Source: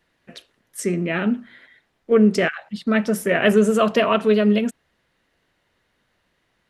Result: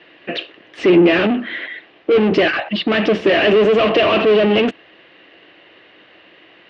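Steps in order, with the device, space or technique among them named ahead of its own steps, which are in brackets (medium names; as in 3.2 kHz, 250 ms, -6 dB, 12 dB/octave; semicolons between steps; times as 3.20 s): overdrive pedal into a guitar cabinet (overdrive pedal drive 36 dB, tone 1.3 kHz, clips at -3 dBFS; cabinet simulation 92–4200 Hz, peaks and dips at 140 Hz -4 dB, 230 Hz -6 dB, 320 Hz +9 dB, 920 Hz -7 dB, 1.4 kHz -6 dB, 2.8 kHz +9 dB); trim -2.5 dB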